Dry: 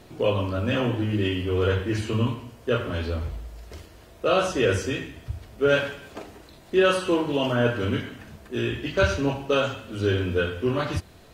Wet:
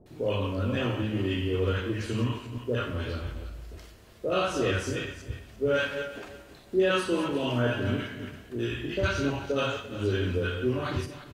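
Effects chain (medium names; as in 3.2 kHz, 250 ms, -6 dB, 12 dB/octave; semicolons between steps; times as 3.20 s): backward echo that repeats 172 ms, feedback 42%, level -9 dB; doubling 32 ms -11 dB; bands offset in time lows, highs 60 ms, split 730 Hz; trim -4.5 dB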